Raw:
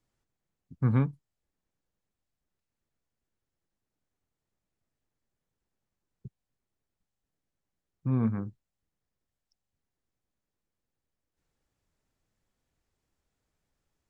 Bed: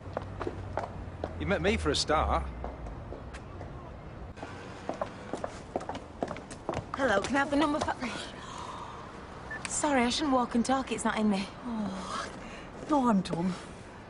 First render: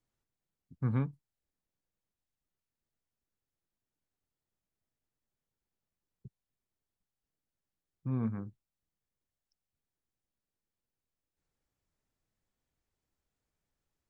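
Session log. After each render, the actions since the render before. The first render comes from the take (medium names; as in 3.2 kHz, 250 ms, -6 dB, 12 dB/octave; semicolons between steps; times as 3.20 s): trim -6 dB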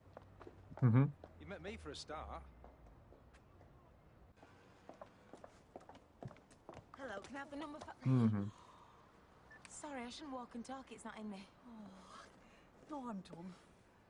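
add bed -21 dB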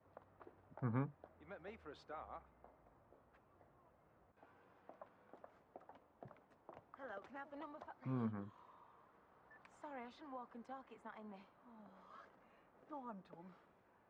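low-pass 1.2 kHz 12 dB/octave; tilt EQ +3.5 dB/octave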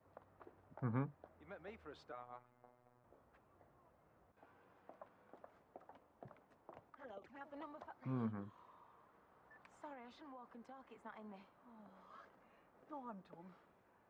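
2.12–3.04 s: robot voice 123 Hz; 6.90–7.41 s: touch-sensitive flanger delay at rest 9 ms, full sweep at -47.5 dBFS; 9.93–10.96 s: compression 3:1, threshold -52 dBFS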